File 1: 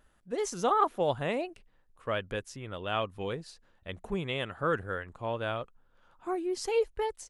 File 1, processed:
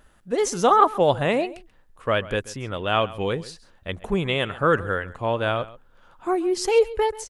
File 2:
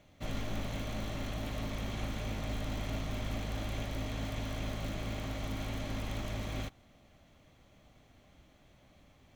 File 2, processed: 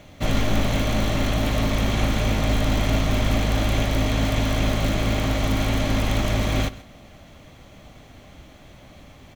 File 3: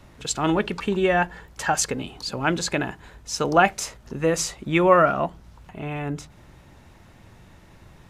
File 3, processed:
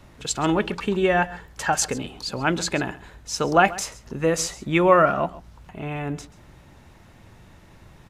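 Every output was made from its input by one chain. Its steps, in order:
single-tap delay 134 ms −18.5 dB
loudness normalisation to −23 LKFS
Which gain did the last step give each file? +9.5, +15.5, 0.0 decibels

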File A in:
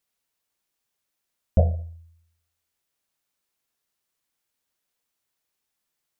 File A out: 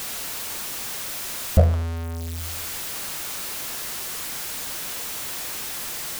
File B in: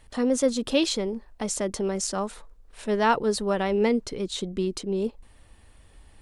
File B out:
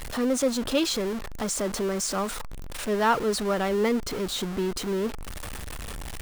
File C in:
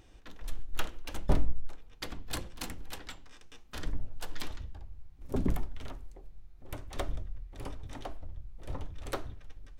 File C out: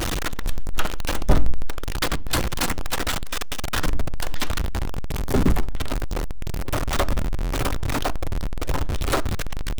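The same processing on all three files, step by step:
converter with a step at zero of −26.5 dBFS
dynamic equaliser 1,300 Hz, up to +4 dB, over −45 dBFS, Q 2.2
loudness normalisation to −27 LKFS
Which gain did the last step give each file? +2.5, −3.5, +7.5 decibels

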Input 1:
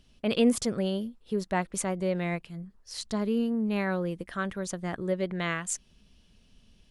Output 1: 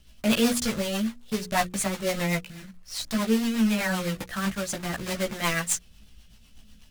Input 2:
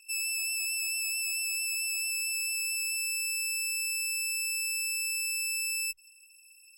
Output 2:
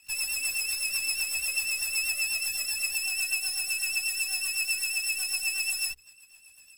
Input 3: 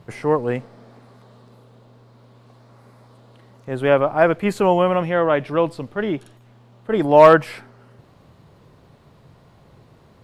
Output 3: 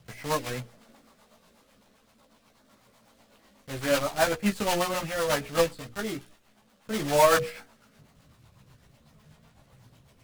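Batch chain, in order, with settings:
one scale factor per block 3 bits
multi-voice chorus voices 4, 0.39 Hz, delay 16 ms, depth 2.4 ms
parametric band 380 Hz −8.5 dB 0.86 octaves
mains-hum notches 60/120/180/240/300/360/420/480 Hz
rotating-speaker cabinet horn 8 Hz
loudness normalisation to −27 LKFS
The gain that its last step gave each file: +10.5, +7.5, −1.5 decibels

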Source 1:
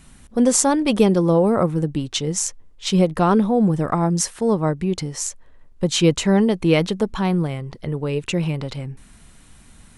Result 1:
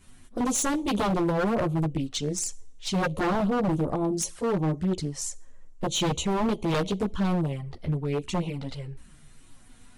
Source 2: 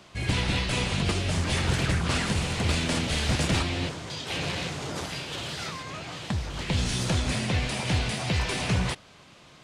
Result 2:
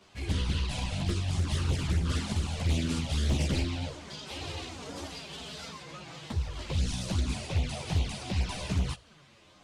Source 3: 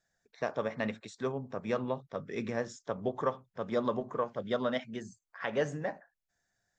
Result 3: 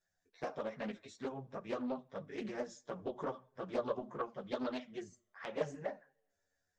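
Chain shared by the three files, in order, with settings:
multi-voice chorus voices 4, 0.37 Hz, delay 13 ms, depth 2.1 ms
coupled-rooms reverb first 0.46 s, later 2.5 s, from −27 dB, DRR 19 dB
flanger swept by the level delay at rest 10.9 ms, full sweep at −21.5 dBFS
dynamic equaliser 1,800 Hz, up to −7 dB, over −49 dBFS, Q 1.3
wave folding −19.5 dBFS
highs frequency-modulated by the lows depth 0.29 ms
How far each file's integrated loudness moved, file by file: −8.0, −4.5, −7.0 LU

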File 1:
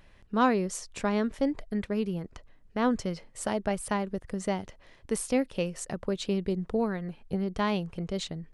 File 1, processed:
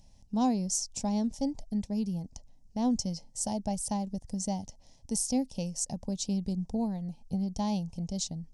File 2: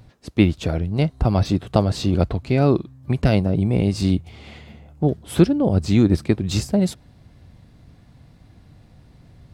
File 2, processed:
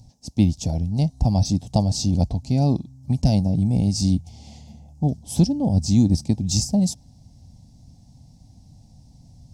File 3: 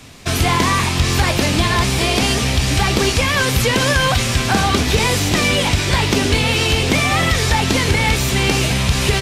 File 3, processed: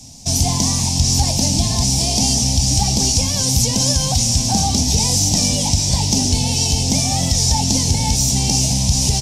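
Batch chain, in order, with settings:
drawn EQ curve 260 Hz 0 dB, 370 Hz −15 dB, 840 Hz −1 dB, 1,300 Hz −28 dB, 3,900 Hz −5 dB, 5,600 Hz +11 dB, 13,000 Hz −2 dB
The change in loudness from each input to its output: −1.5, −1.0, +0.5 LU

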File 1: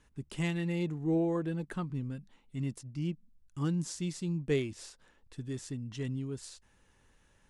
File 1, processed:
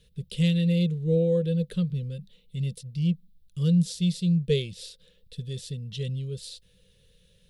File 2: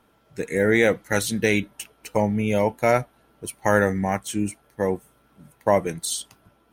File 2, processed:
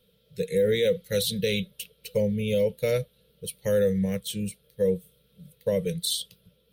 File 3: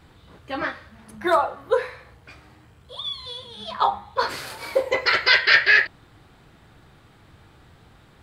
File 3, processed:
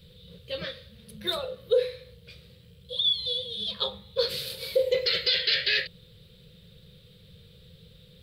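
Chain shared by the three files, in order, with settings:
drawn EQ curve 120 Hz 0 dB, 180 Hz +7 dB, 290 Hz −21 dB, 500 Hz +8 dB, 750 Hz −25 dB, 2,000 Hz −9 dB, 3,700 Hz +10 dB, 6,600 Hz −6 dB, 14,000 Hz +7 dB
boost into a limiter +11.5 dB
loudness normalisation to −27 LKFS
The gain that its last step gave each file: −6.5, −14.0, −13.0 decibels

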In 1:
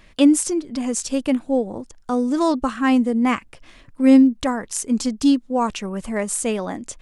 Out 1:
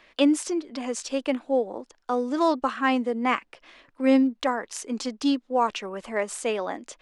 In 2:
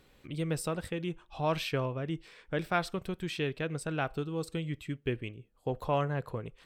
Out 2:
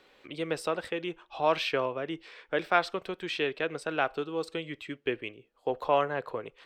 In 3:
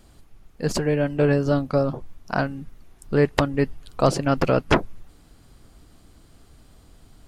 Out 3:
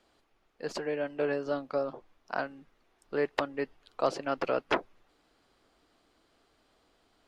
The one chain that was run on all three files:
three-way crossover with the lows and the highs turned down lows −20 dB, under 310 Hz, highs −14 dB, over 5,400 Hz
normalise the peak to −9 dBFS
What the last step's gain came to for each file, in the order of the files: −0.5, +5.5, −7.5 decibels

